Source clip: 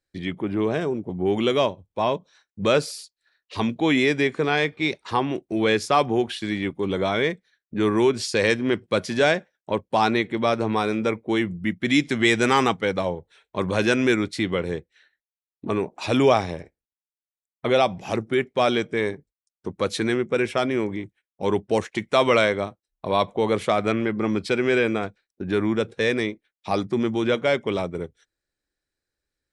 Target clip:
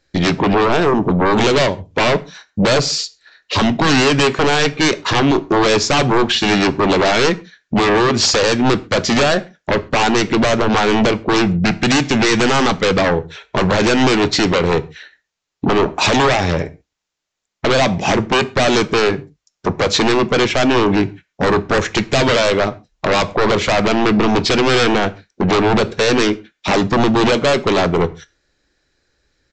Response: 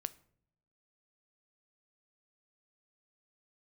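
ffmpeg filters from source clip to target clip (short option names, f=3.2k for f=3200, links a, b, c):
-filter_complex "[0:a]alimiter=limit=-17dB:level=0:latency=1:release=251,aresample=16000,aeval=exprs='0.15*sin(PI/2*3.16*val(0)/0.15)':c=same,aresample=44100[a];[1:a]atrim=start_sample=2205,afade=t=out:st=0.19:d=0.01,atrim=end_sample=8820[b];[a][b]afir=irnorm=-1:irlink=0,volume=8dB"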